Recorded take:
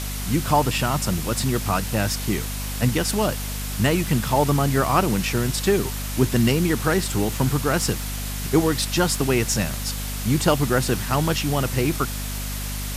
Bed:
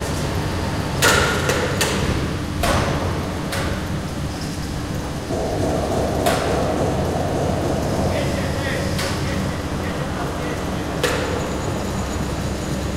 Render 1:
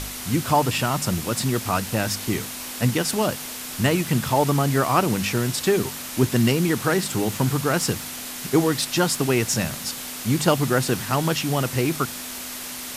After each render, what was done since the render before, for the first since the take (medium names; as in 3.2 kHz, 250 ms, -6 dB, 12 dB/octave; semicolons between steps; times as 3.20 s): de-hum 50 Hz, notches 4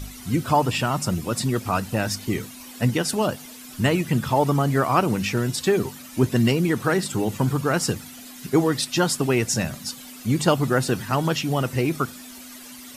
noise reduction 13 dB, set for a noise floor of -34 dBFS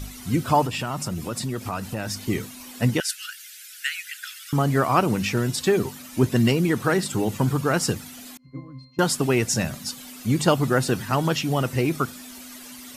0.66–2.16 s: compression 2.5:1, threshold -26 dBFS; 3.00–4.53 s: steep high-pass 1.4 kHz 96 dB/octave; 8.37–8.99 s: pitch-class resonator C, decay 0.44 s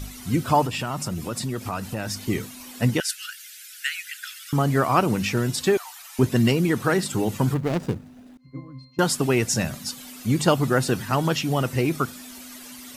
5.77–6.19 s: steep high-pass 700 Hz 72 dB/octave; 7.54–8.41 s: median filter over 41 samples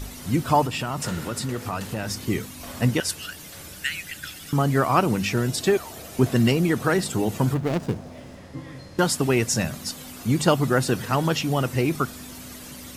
add bed -22 dB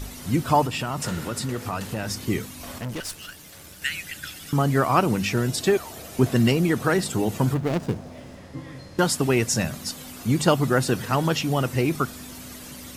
2.78–3.82 s: valve stage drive 28 dB, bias 0.75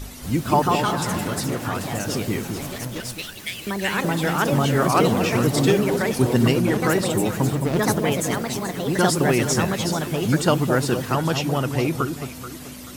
ever faster or slower copies 233 ms, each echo +3 st, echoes 2; echo whose repeats swap between lows and highs 216 ms, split 940 Hz, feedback 53%, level -6 dB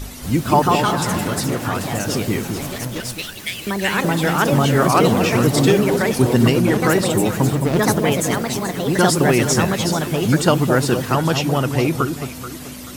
trim +4 dB; peak limiter -3 dBFS, peak gain reduction 3 dB